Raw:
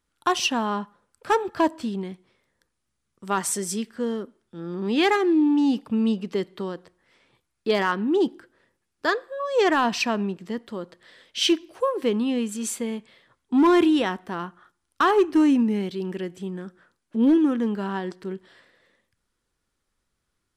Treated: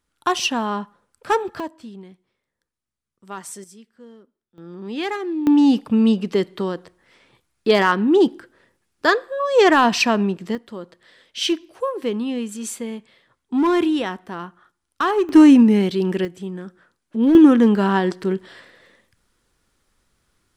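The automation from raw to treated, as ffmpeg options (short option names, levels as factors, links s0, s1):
-af "asetnsamples=n=441:p=0,asendcmd='1.6 volume volume -9dB;3.64 volume volume -17dB;4.58 volume volume -5.5dB;5.47 volume volume 6.5dB;10.55 volume volume -0.5dB;15.29 volume volume 9dB;16.25 volume volume 2dB;17.35 volume volume 10.5dB',volume=1.26"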